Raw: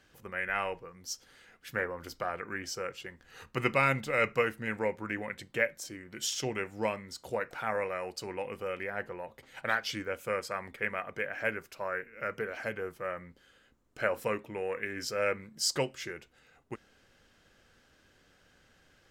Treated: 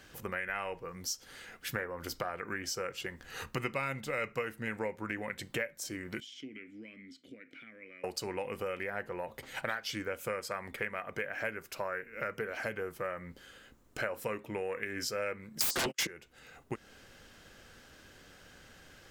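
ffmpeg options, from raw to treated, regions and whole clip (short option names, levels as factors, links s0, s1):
-filter_complex "[0:a]asettb=1/sr,asplit=3[s0][s1][s2];[s0]atrim=end=6.204[s3];[s1]atrim=start=6.2:end=8.04,asetpts=PTS-STARTPTS,afade=t=in:d=0.004:c=qsin,afade=t=out:st=1.836:d=0.004:c=qsin,acompressor=threshold=0.01:ratio=3:attack=3.2:release=140:knee=1:detection=peak,asplit=3[s4][s5][s6];[s4]bandpass=f=270:t=q:w=8,volume=1[s7];[s5]bandpass=f=2290:t=q:w=8,volume=0.501[s8];[s6]bandpass=f=3010:t=q:w=8,volume=0.355[s9];[s7][s8][s9]amix=inputs=3:normalize=0[s10];[s2]atrim=start=8.036[s11];[s3][s10]acrossfade=d=0.004:c1=hsin:c2=qsin[s12];[s12][s11]acrossfade=d=0.004:c1=qsin:c2=hsin,asettb=1/sr,asplit=3[s13][s14][s15];[s13]atrim=end=15.604[s16];[s14]atrim=start=15.6:end=16.07,asetpts=PTS-STARTPTS,afade=t=in:d=0.004:c=qsin,afade=t=out:st=0.466:d=0.004:c=qsin,agate=range=0.00447:threshold=0.00501:ratio=16:release=100:detection=peak,highpass=f=150:w=0.5412,highpass=f=150:w=1.3066,aeval=exprs='0.15*sin(PI/2*8.91*val(0)/0.15)':c=same[s17];[s15]atrim=start=16.066[s18];[s16][s17]acrossfade=d=0.004:c1=hsin:c2=qsin[s19];[s19][s18]acrossfade=d=0.004:c1=qsin:c2=hsin,highshelf=f=9400:g=6,acompressor=threshold=0.00708:ratio=4,volume=2.51"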